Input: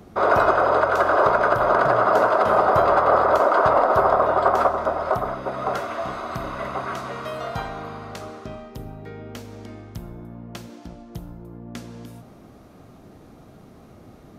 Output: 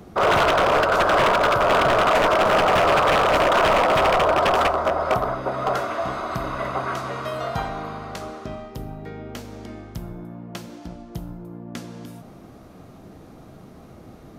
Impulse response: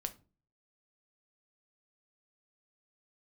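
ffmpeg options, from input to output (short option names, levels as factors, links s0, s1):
-filter_complex "[0:a]aeval=exprs='0.188*(abs(mod(val(0)/0.188+3,4)-2)-1)':c=same,asplit=2[s0][s1];[1:a]atrim=start_sample=2205[s2];[s1][s2]afir=irnorm=-1:irlink=0,volume=1[s3];[s0][s3]amix=inputs=2:normalize=0,volume=0.708"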